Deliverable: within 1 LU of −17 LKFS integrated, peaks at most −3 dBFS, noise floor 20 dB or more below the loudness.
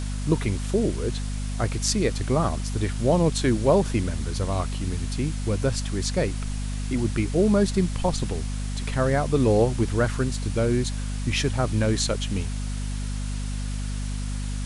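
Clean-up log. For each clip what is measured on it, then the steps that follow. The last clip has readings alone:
mains hum 50 Hz; hum harmonics up to 250 Hz; level of the hum −26 dBFS; background noise floor −29 dBFS; target noise floor −46 dBFS; integrated loudness −25.5 LKFS; sample peak −8.0 dBFS; target loudness −17.0 LKFS
→ mains-hum notches 50/100/150/200/250 Hz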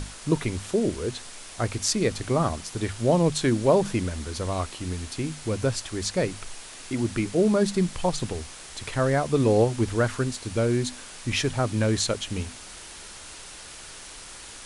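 mains hum none found; background noise floor −43 dBFS; target noise floor −46 dBFS
→ broadband denoise 6 dB, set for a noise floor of −43 dBFS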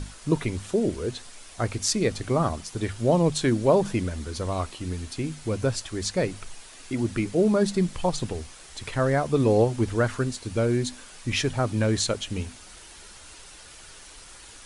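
background noise floor −47 dBFS; integrated loudness −26.0 LKFS; sample peak −7.5 dBFS; target loudness −17.0 LKFS
→ level +9 dB
brickwall limiter −3 dBFS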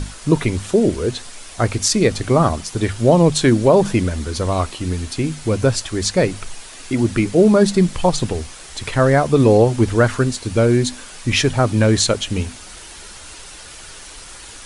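integrated loudness −17.5 LKFS; sample peak −3.0 dBFS; background noise floor −38 dBFS

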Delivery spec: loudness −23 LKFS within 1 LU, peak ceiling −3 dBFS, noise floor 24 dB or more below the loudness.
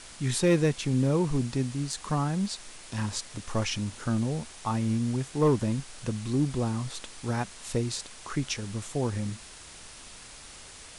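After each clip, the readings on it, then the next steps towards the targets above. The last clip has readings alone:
share of clipped samples 0.3%; peaks flattened at −16.5 dBFS; background noise floor −47 dBFS; target noise floor −54 dBFS; integrated loudness −29.5 LKFS; sample peak −16.5 dBFS; target loudness −23.0 LKFS
→ clipped peaks rebuilt −16.5 dBFS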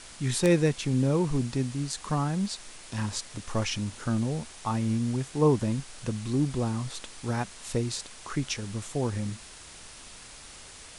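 share of clipped samples 0.0%; background noise floor −47 dBFS; target noise floor −54 dBFS
→ broadband denoise 7 dB, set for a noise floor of −47 dBFS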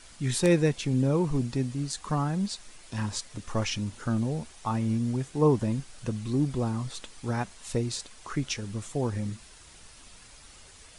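background noise floor −52 dBFS; target noise floor −54 dBFS
→ broadband denoise 6 dB, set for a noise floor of −52 dBFS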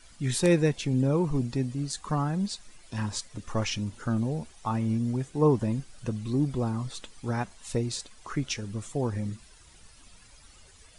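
background noise floor −55 dBFS; integrated loudness −29.5 LKFS; sample peak −8.0 dBFS; target loudness −23.0 LKFS
→ level +6.5 dB
brickwall limiter −3 dBFS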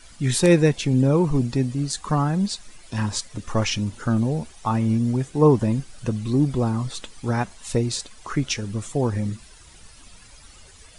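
integrated loudness −23.0 LKFS; sample peak −3.0 dBFS; background noise floor −48 dBFS

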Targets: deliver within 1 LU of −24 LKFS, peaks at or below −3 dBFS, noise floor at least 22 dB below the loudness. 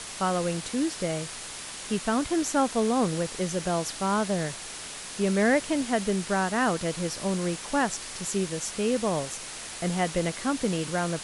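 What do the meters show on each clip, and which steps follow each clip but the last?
background noise floor −39 dBFS; target noise floor −50 dBFS; integrated loudness −28.0 LKFS; sample peak −12.0 dBFS; target loudness −24.0 LKFS
→ broadband denoise 11 dB, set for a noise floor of −39 dBFS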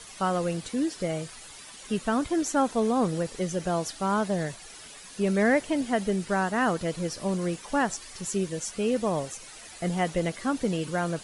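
background noise floor −46 dBFS; target noise floor −50 dBFS
→ broadband denoise 6 dB, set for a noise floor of −46 dBFS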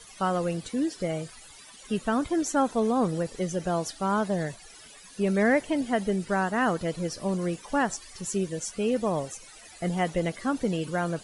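background noise floor −49 dBFS; target noise floor −50 dBFS
→ broadband denoise 6 dB, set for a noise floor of −49 dBFS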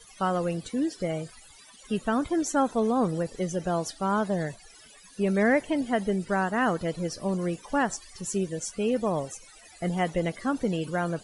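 background noise floor −52 dBFS; integrated loudness −28.0 LKFS; sample peak −12.0 dBFS; target loudness −24.0 LKFS
→ level +4 dB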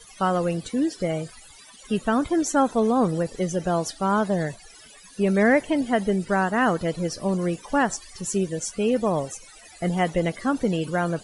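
integrated loudness −24.0 LKFS; sample peak −8.5 dBFS; background noise floor −48 dBFS

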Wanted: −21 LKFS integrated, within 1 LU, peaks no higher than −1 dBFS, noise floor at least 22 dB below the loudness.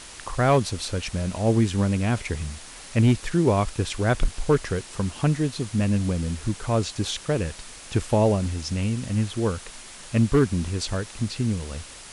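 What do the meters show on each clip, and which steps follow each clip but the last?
share of clipped samples 0.3%; peaks flattened at −11.5 dBFS; background noise floor −43 dBFS; target noise floor −47 dBFS; integrated loudness −25.0 LKFS; sample peak −11.5 dBFS; target loudness −21.0 LKFS
→ clipped peaks rebuilt −11.5 dBFS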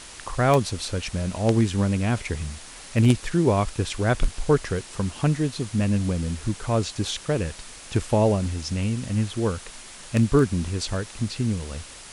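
share of clipped samples 0.0%; background noise floor −43 dBFS; target noise floor −47 dBFS
→ broadband denoise 6 dB, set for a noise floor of −43 dBFS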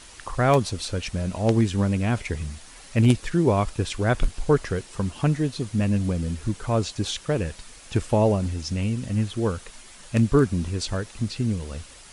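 background noise floor −47 dBFS; integrated loudness −24.5 LKFS; sample peak −2.5 dBFS; target loudness −21.0 LKFS
→ level +3.5 dB
brickwall limiter −1 dBFS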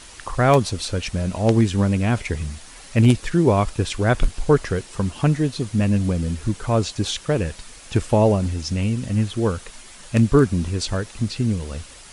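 integrated loudness −21.0 LKFS; sample peak −1.0 dBFS; background noise floor −43 dBFS

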